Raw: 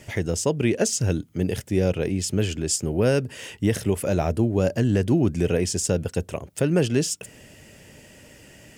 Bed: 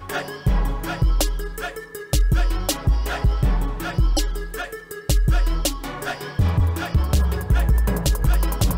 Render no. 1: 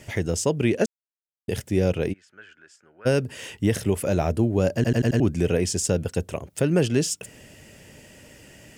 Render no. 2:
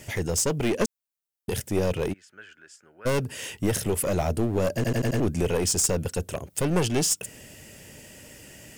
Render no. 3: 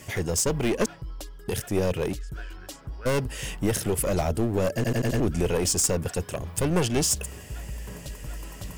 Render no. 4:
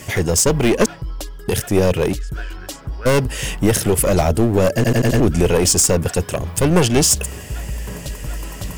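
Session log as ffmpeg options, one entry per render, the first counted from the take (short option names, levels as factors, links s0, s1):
-filter_complex "[0:a]asplit=3[s0][s1][s2];[s0]afade=t=out:st=2.12:d=0.02[s3];[s1]bandpass=f=1500:t=q:w=7.7,afade=t=in:st=2.12:d=0.02,afade=t=out:st=3.05:d=0.02[s4];[s2]afade=t=in:st=3.05:d=0.02[s5];[s3][s4][s5]amix=inputs=3:normalize=0,asplit=8[s6][s7][s8][s9][s10][s11][s12][s13];[s6]atrim=end=0.86,asetpts=PTS-STARTPTS,afade=t=out:st=0.856:d=0.004:c=hsin[s14];[s7]atrim=start=0.86:end=1.48,asetpts=PTS-STARTPTS,volume=0[s15];[s8]atrim=start=1.48:end=4.842,asetpts=PTS-STARTPTS,afade=t=in:d=0.004:c=hsin[s16];[s9]atrim=start=4.748:end=4.842[s17];[s10]atrim=start=4.748:end=4.842[s18];[s11]atrim=start=4.748:end=4.842[s19];[s12]atrim=start=4.748:end=4.842[s20];[s13]atrim=start=5.198[s21];[s14][s15][s16]concat=n=3:v=0:a=1[s22];[s22][s17]acrossfade=d=0.004:c1=hsin:c2=hsin[s23];[s23][s18]acrossfade=d=0.004:c1=hsin:c2=hsin[s24];[s24][s19]acrossfade=d=0.004:c1=hsin:c2=hsin[s25];[s25][s20]acrossfade=d=0.004:c1=hsin:c2=hsin[s26];[s26][s21]acrossfade=d=0.004:c1=hsin:c2=hsin"
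-af "aeval=exprs='clip(val(0),-1,0.0631)':c=same,crystalizer=i=1:c=0"
-filter_complex "[1:a]volume=0.119[s0];[0:a][s0]amix=inputs=2:normalize=0"
-af "volume=2.99,alimiter=limit=0.794:level=0:latency=1"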